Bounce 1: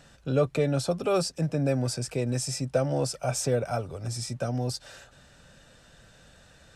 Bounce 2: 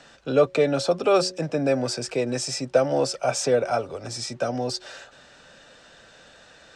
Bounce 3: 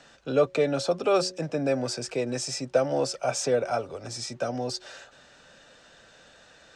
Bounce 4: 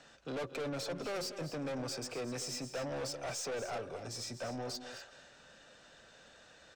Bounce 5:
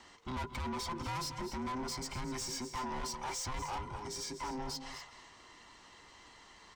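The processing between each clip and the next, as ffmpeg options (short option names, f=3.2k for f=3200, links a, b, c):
-filter_complex "[0:a]acrossover=split=250 7600:gain=0.178 1 0.0708[a][b][c];[a][b][c]amix=inputs=3:normalize=0,bandreject=f=183.9:t=h:w=4,bandreject=f=367.8:t=h:w=4,bandreject=f=551.7:t=h:w=4,volume=7dB"
-af "equalizer=f=6.5k:w=7.7:g=2.5,volume=-3.5dB"
-af "aeval=exprs='(tanh(35.5*val(0)+0.1)-tanh(0.1))/35.5':c=same,aecho=1:1:221|249:0.15|0.237,volume=-5dB"
-af "afftfilt=real='real(if(between(b,1,1008),(2*floor((b-1)/24)+1)*24-b,b),0)':imag='imag(if(between(b,1,1008),(2*floor((b-1)/24)+1)*24-b,b),0)*if(between(b,1,1008),-1,1)':win_size=2048:overlap=0.75,asoftclip=type=tanh:threshold=-34dB,volume=2dB"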